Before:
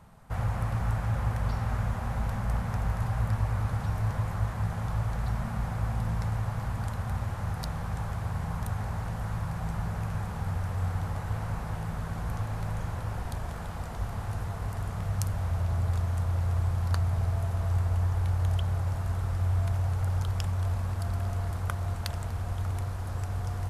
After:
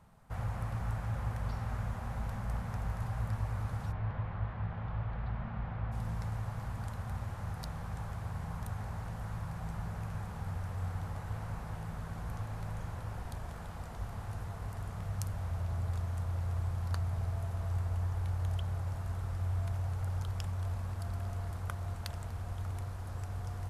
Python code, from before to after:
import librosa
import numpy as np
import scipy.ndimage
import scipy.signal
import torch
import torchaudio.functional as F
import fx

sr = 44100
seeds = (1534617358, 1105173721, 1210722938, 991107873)

y = fx.lowpass(x, sr, hz=3300.0, slope=24, at=(3.91, 5.91), fade=0.02)
y = F.gain(torch.from_numpy(y), -7.0).numpy()